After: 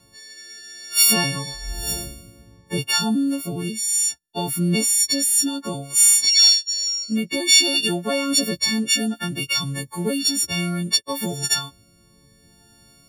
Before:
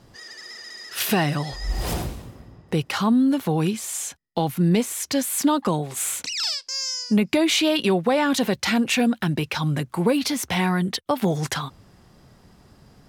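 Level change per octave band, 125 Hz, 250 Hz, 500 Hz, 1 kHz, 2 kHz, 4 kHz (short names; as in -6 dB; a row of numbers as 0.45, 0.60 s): -3.5, -3.5, -5.0, -5.5, +1.0, +8.5 dB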